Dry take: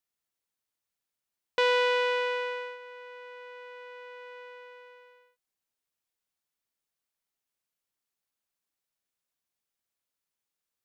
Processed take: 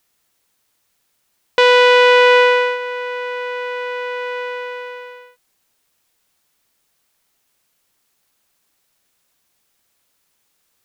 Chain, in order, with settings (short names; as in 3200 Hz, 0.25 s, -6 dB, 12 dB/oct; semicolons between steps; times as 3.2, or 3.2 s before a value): maximiser +22 dB; gain -1 dB